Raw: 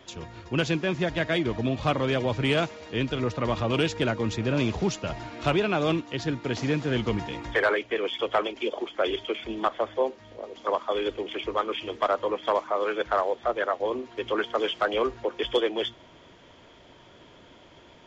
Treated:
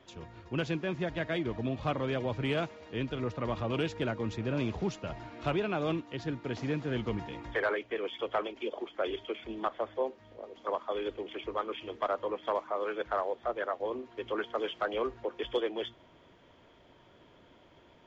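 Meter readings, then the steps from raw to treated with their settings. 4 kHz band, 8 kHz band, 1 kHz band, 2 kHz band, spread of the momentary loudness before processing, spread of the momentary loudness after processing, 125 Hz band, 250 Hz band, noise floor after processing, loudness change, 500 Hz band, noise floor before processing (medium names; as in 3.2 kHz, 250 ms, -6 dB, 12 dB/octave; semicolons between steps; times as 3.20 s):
-10.0 dB, no reading, -7.0 dB, -8.0 dB, 6 LU, 6 LU, -6.5 dB, -6.5 dB, -60 dBFS, -7.0 dB, -6.5 dB, -53 dBFS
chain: treble shelf 3.9 kHz -9 dB; trim -6.5 dB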